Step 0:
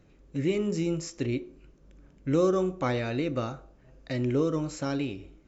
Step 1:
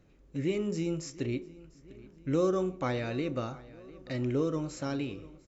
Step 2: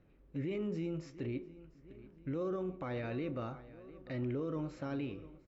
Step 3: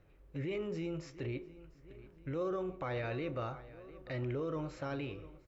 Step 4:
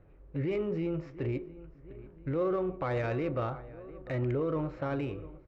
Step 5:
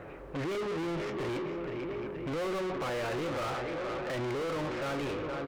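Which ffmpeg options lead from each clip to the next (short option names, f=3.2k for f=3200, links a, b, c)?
-filter_complex "[0:a]asplit=2[a][b];[b]adelay=698,lowpass=f=4.8k:p=1,volume=-20dB,asplit=2[c][d];[d]adelay=698,lowpass=f=4.8k:p=1,volume=0.54,asplit=2[e][f];[f]adelay=698,lowpass=f=4.8k:p=1,volume=0.54,asplit=2[g][h];[h]adelay=698,lowpass=f=4.8k:p=1,volume=0.54[i];[a][c][e][g][i]amix=inputs=5:normalize=0,volume=-3.5dB"
-af "lowpass=2.8k,alimiter=level_in=3dB:limit=-24dB:level=0:latency=1:release=10,volume=-3dB,volume=-3.5dB"
-af "equalizer=f=230:t=o:w=0.96:g=-11,volume=4dB"
-af "adynamicsmooth=sensitivity=4:basefreq=1.8k,volume=6.5dB"
-filter_complex "[0:a]aecho=1:1:470|940|1410:0.158|0.0602|0.0229,asplit=2[a][b];[b]highpass=f=720:p=1,volume=38dB,asoftclip=type=tanh:threshold=-21dB[c];[a][c]amix=inputs=2:normalize=0,lowpass=f=4.2k:p=1,volume=-6dB,volume=-7dB"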